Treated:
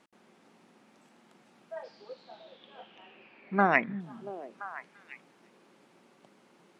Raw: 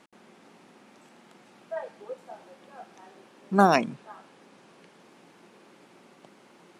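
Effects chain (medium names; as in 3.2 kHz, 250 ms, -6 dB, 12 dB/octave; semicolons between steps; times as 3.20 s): 1.83–3.99 s: resonant low-pass 5.1 kHz -> 1.8 kHz, resonance Q 9.4; repeats whose band climbs or falls 341 ms, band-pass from 170 Hz, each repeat 1.4 oct, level -6.5 dB; trim -7 dB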